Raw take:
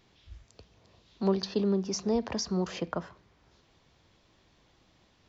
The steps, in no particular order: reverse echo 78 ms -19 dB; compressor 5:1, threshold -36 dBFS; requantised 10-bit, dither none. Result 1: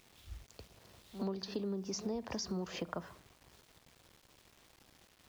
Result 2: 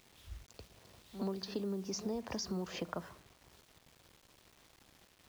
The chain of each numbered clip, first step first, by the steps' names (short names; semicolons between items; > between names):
requantised > reverse echo > compressor; reverse echo > compressor > requantised